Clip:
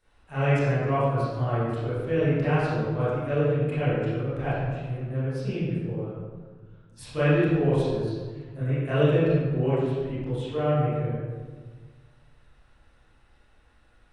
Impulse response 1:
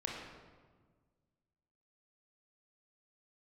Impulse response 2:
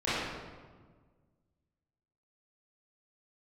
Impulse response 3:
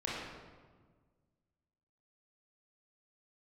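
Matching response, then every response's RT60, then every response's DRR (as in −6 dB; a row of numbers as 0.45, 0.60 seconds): 2; 1.5, 1.5, 1.5 seconds; −2.0, −13.5, −6.5 decibels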